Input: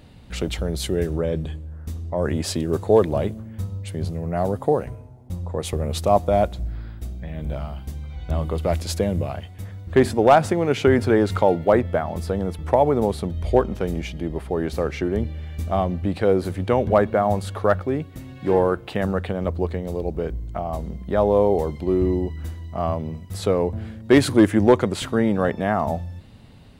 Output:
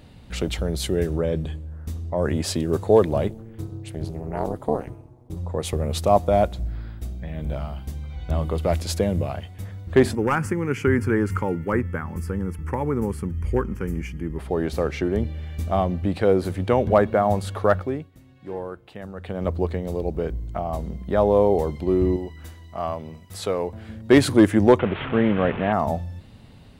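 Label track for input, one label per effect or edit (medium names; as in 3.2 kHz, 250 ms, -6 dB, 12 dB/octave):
3.280000	5.370000	AM modulator 230 Hz, depth 100%
10.150000	14.390000	static phaser centre 1.6 kHz, stages 4
17.790000	19.480000	dip -13.5 dB, fades 0.32 s linear
22.160000	23.890000	bass shelf 410 Hz -10 dB
24.790000	25.730000	one-bit delta coder 16 kbps, step -25 dBFS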